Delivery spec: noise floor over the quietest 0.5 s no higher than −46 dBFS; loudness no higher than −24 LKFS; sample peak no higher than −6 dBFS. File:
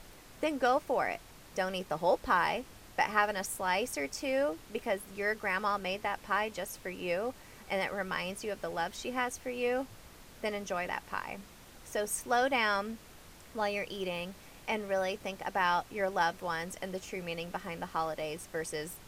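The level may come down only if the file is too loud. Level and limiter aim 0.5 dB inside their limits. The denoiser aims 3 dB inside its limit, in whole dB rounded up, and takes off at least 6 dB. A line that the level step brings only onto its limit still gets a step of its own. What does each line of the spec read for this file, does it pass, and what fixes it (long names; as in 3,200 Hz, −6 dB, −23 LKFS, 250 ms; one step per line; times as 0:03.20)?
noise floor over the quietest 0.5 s −53 dBFS: in spec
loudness −33.5 LKFS: in spec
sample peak −12.5 dBFS: in spec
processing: no processing needed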